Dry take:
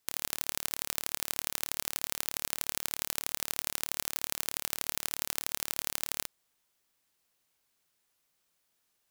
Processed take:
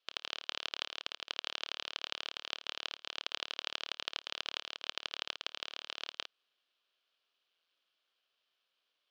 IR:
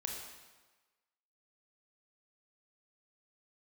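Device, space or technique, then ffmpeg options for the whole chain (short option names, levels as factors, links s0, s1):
voice changer toy: -af "lowpass=6200,aeval=exprs='val(0)*sin(2*PI*410*n/s+410*0.8/0.46*sin(2*PI*0.46*n/s))':c=same,highpass=520,equalizer=f=860:t=q:w=4:g=-10,equalizer=f=2000:t=q:w=4:g=-8,equalizer=f=3100:t=q:w=4:g=7,lowpass=f=4500:w=0.5412,lowpass=f=4500:w=1.3066,volume=1.5"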